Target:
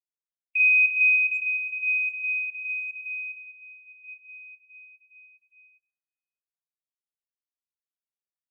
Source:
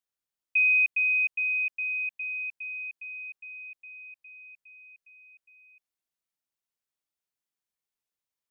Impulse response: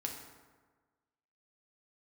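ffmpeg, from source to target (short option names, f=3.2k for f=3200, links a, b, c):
-filter_complex "[0:a]asettb=1/sr,asplit=3[a][b][c];[a]atrim=end=2.454[d];[b]atrim=start=2.45:end=2.89,asetpts=PTS-STARTPTS,afade=t=in:d=0.004:c=qsin,afade=t=out:st=0.436:d=0.004:c=qsin,asuperpass=centerf=2400:order=4:qfactor=3.6[e];[c]atrim=start=2.886[f];[d][e]acrossfade=d=0.004:c1=hsin:c2=qsin[g];[g][f]acrossfade=d=0.004:c1=qsin:c2=hsin,asettb=1/sr,asplit=3[h][i][j];[h]atrim=end=3.404[k];[i]atrim=start=3.4:end=4.04,asetpts=PTS-STARTPTS,afade=t=in:d=0.004:c=qsin,afade=t=out:st=0.636:d=0.004:c=qsin,aderivative[l];[j]atrim=start=4.036[m];[k][l]acrossfade=d=0.004:c1=hsin:c2=qsin[n];[n][m]acrossfade=d=0.004:c1=qsin:c2=hsin,asplit=2[o][p];[1:a]atrim=start_sample=2205,adelay=21[q];[p][q]afir=irnorm=-1:irlink=0,volume=-17.5dB[r];[o][r]amix=inputs=2:normalize=0,asplit=3[s][t][u];[s]afade=t=out:st=1.37:d=0.02[v];[t]acompressor=threshold=-35dB:ratio=2,afade=t=in:st=1.37:d=0.02,afade=t=out:st=1.8:d=0.02[w];[u]afade=t=in:st=1.8:d=0.02[x];[v][w][x]amix=inputs=3:normalize=0,asplit=2[y][z];[z]acrusher=bits=6:mix=0:aa=0.000001,volume=-11dB[aa];[y][aa]amix=inputs=2:normalize=0,aecho=1:1:45|132|605:0.708|0.299|0.237,afftdn=nr=30:nf=-38,dynaudnorm=f=150:g=9:m=8.5dB,volume=-7.5dB" -ar 44100 -c:a aac -b:a 192k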